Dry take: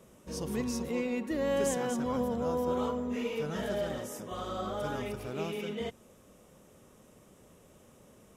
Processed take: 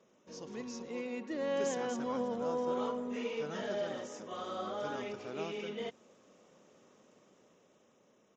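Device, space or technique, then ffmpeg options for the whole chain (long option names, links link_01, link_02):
Bluetooth headset: -af "highpass=230,dynaudnorm=framelen=230:gausssize=11:maxgain=5.5dB,aresample=16000,aresample=44100,volume=-8dB" -ar 16000 -c:a sbc -b:a 64k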